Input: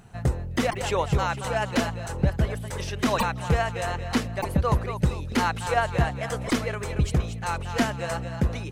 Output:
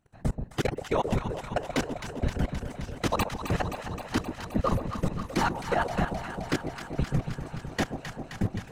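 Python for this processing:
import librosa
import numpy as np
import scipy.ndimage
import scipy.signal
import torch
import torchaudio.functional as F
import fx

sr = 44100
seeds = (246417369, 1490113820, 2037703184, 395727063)

y = fx.whisperise(x, sr, seeds[0])
y = fx.level_steps(y, sr, step_db=24)
y = fx.hpss(y, sr, part='harmonic', gain_db=-4)
y = fx.echo_alternate(y, sr, ms=131, hz=850.0, feedback_pct=86, wet_db=-7)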